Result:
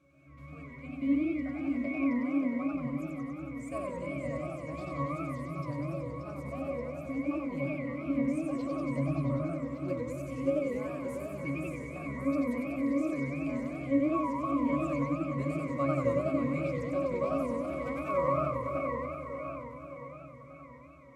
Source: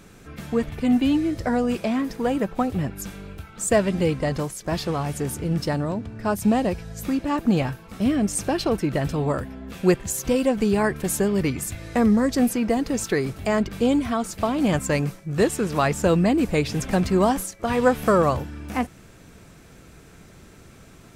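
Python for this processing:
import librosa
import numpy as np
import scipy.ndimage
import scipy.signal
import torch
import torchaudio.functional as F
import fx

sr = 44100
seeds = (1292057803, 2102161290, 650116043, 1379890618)

p1 = (np.mod(10.0 ** (8.0 / 20.0) * x + 1.0, 2.0) - 1.0) / 10.0 ** (8.0 / 20.0)
p2 = x + (p1 * librosa.db_to_amplitude(-11.5))
p3 = fx.riaa(p2, sr, side='recording')
p4 = fx.octave_resonator(p3, sr, note='C#', decay_s=0.44)
p5 = fx.echo_feedback(p4, sr, ms=580, feedback_pct=52, wet_db=-7.0)
p6 = fx.echo_warbled(p5, sr, ms=94, feedback_pct=75, rate_hz=2.8, cents=207, wet_db=-3.5)
y = p6 * librosa.db_to_amplitude(4.5)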